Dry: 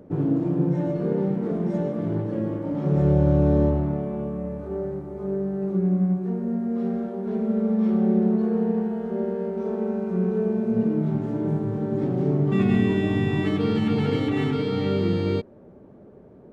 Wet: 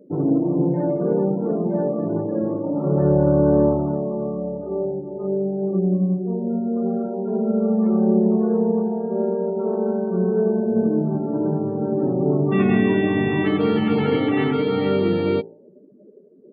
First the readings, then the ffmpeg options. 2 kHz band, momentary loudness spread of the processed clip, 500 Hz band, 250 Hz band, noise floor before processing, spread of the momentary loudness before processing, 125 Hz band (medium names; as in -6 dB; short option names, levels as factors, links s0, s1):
+5.5 dB, 7 LU, +5.5 dB, +3.0 dB, -48 dBFS, 8 LU, -0.5 dB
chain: -filter_complex "[0:a]equalizer=f=67:w=0.55:g=-15,afftdn=nr=32:nf=-40,acrossover=split=3300[s0][s1];[s1]acompressor=threshold=0.001:ratio=4:attack=1:release=60[s2];[s0][s2]amix=inputs=2:normalize=0,bandreject=f=56.45:t=h:w=4,bandreject=f=112.9:t=h:w=4,bandreject=f=169.35:t=h:w=4,bandreject=f=225.8:t=h:w=4,bandreject=f=282.25:t=h:w=4,bandreject=f=338.7:t=h:w=4,bandreject=f=395.15:t=h:w=4,bandreject=f=451.6:t=h:w=4,bandreject=f=508.05:t=h:w=4,bandreject=f=564.5:t=h:w=4,bandreject=f=620.95:t=h:w=4,bandreject=f=677.4:t=h:w=4,bandreject=f=733.85:t=h:w=4,bandreject=f=790.3:t=h:w=4,bandreject=f=846.75:t=h:w=4,bandreject=f=903.2:t=h:w=4,volume=2.37"